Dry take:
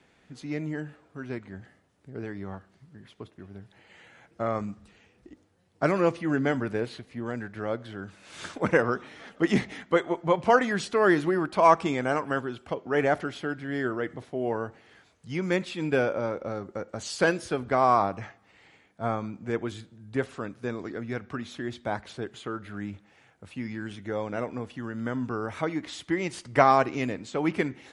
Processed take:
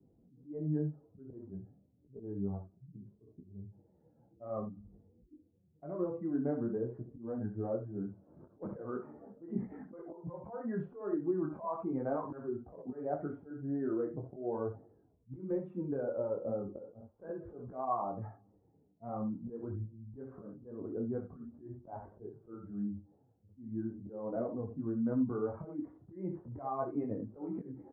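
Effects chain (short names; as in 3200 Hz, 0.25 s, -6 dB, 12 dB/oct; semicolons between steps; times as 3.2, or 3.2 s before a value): spectral contrast raised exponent 1.6; LPF 1100 Hz 24 dB/oct; low-pass opened by the level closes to 330 Hz, open at -20.5 dBFS; compressor 6:1, threshold -29 dBFS, peak gain reduction 14 dB; early reflections 27 ms -15 dB, 65 ms -9.5 dB; auto swell 0.208 s; detuned doubles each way 14 cents; gain +2 dB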